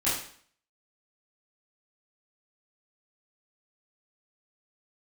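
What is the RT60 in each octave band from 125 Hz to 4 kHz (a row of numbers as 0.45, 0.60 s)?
0.50, 0.55, 0.55, 0.55, 0.55, 0.50 s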